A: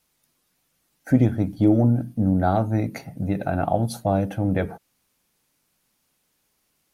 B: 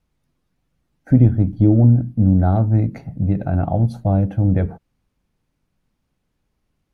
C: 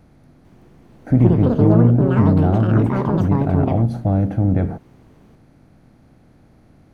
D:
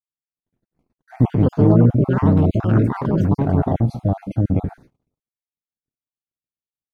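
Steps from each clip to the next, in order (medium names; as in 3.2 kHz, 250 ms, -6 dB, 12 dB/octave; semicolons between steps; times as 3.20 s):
RIAA curve playback; trim -3.5 dB
spectral levelling over time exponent 0.6; ever faster or slower copies 448 ms, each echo +6 st, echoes 2; trim -3.5 dB
random holes in the spectrogram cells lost 30%; gate -43 dBFS, range -60 dB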